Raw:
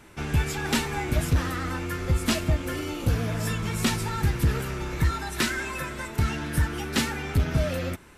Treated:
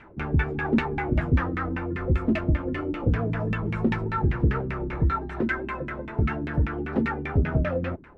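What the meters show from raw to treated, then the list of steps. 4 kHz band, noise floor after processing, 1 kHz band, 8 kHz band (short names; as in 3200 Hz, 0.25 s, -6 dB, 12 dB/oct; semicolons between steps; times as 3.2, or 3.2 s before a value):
-14.5 dB, -38 dBFS, +1.0 dB, under -30 dB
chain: LFO low-pass saw down 5.1 Hz 200–2500 Hz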